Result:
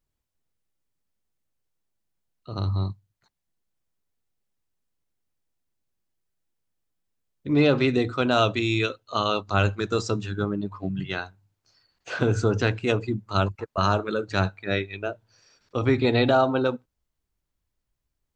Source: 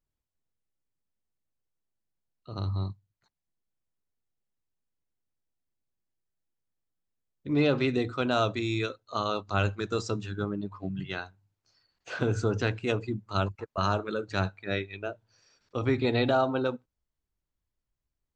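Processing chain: 8.38–9.39 s: peaking EQ 2.9 kHz +7.5 dB 0.36 oct; trim +5 dB

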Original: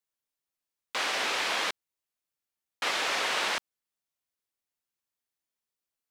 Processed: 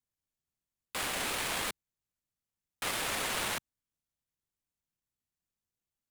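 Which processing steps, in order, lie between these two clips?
median filter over 9 samples; tone controls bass +15 dB, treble +13 dB; trim -5.5 dB

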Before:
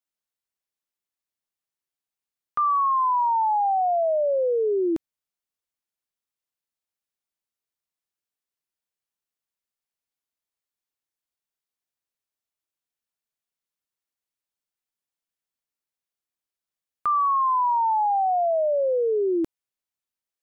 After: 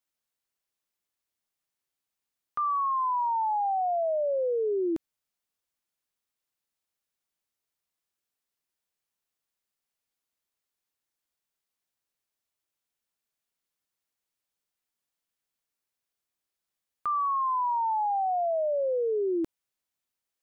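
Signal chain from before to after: peak limiter -27 dBFS, peak gain reduction 9 dB; trim +3 dB

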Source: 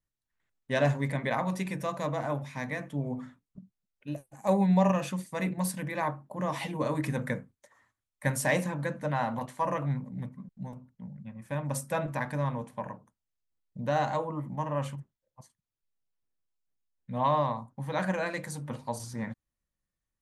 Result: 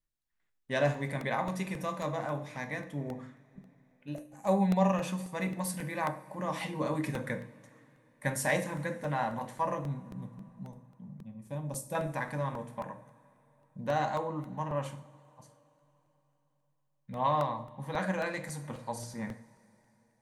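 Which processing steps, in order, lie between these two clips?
de-hum 60.01 Hz, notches 10; 9.75–11.95 s: peaking EQ 1.7 kHz -14 dB 1.6 oct; two-slope reverb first 0.46 s, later 3.7 s, from -20 dB, DRR 8 dB; crackling interface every 0.27 s, samples 64, repeat, from 0.40 s; trim -2.5 dB

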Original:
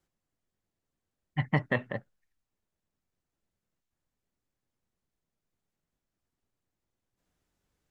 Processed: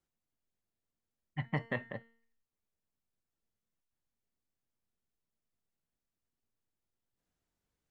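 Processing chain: feedback comb 230 Hz, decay 0.54 s, harmonics all, mix 60%

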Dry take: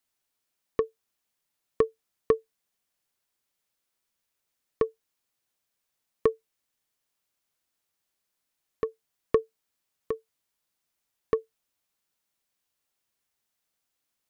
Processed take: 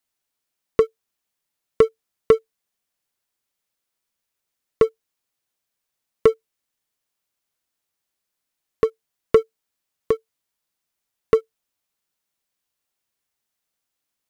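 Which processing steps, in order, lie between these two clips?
waveshaping leveller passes 2; trim +4 dB

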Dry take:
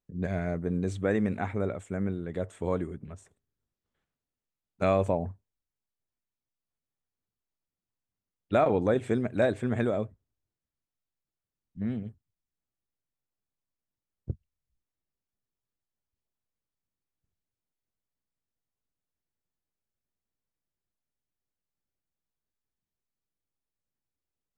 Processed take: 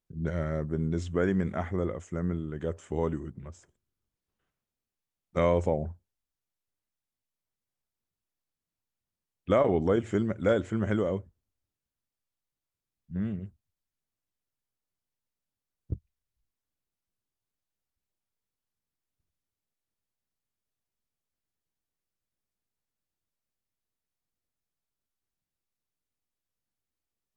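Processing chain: wide varispeed 0.898×

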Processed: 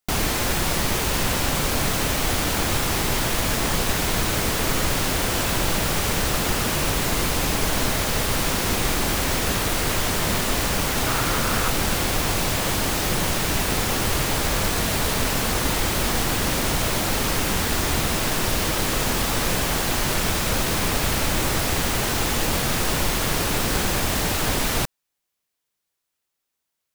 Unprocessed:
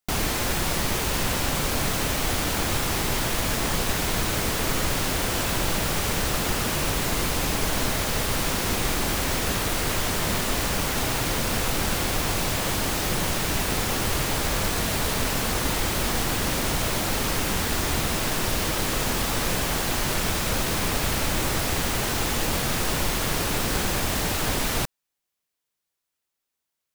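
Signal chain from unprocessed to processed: 11.06–11.70 s: peaking EQ 1.3 kHz +7 dB 0.49 oct; trim +2.5 dB

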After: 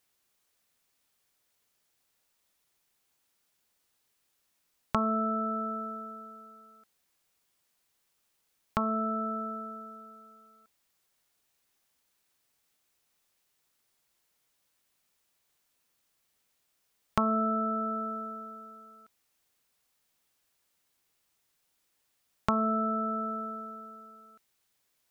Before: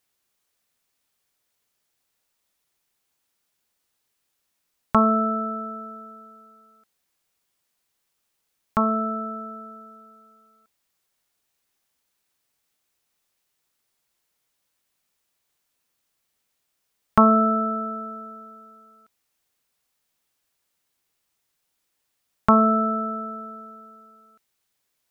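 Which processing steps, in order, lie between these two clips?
compression 2.5:1, threshold -30 dBFS, peak gain reduction 13.5 dB

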